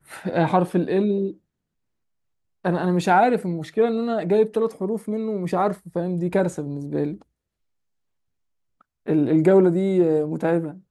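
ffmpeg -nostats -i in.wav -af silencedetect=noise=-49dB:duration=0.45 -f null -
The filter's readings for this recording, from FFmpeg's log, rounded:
silence_start: 1.37
silence_end: 2.64 | silence_duration: 1.27
silence_start: 7.22
silence_end: 8.81 | silence_duration: 1.59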